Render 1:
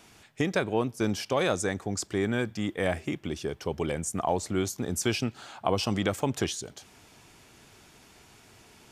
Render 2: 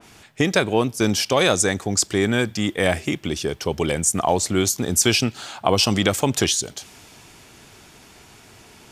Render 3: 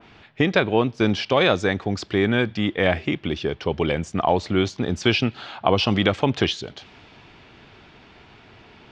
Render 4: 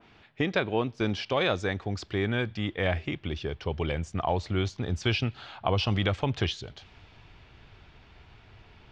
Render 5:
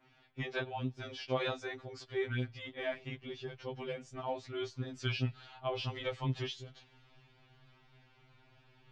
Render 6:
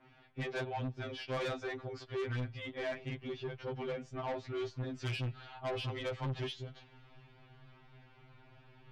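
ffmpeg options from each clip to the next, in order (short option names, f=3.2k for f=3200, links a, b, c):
-af "adynamicequalizer=threshold=0.00501:dfrequency=2400:dqfactor=0.7:tfrequency=2400:tqfactor=0.7:attack=5:release=100:ratio=0.375:range=3.5:mode=boostabove:tftype=highshelf,volume=7.5dB"
-af "lowpass=f=3.8k:w=0.5412,lowpass=f=3.8k:w=1.3066"
-af "asubboost=boost=5:cutoff=100,volume=-7.5dB"
-af "afftfilt=real='re*2.45*eq(mod(b,6),0)':imag='im*2.45*eq(mod(b,6),0)':win_size=2048:overlap=0.75,volume=-7dB"
-af "aemphasis=mode=reproduction:type=75fm,asoftclip=type=tanh:threshold=-37.5dB,volume=4.5dB"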